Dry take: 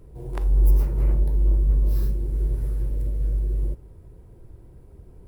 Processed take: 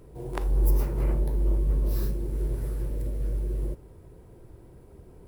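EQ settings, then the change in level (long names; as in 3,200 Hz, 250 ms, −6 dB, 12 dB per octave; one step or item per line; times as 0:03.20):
low-shelf EQ 65 Hz −10 dB
parametric band 93 Hz −3.5 dB 2.7 octaves
+3.5 dB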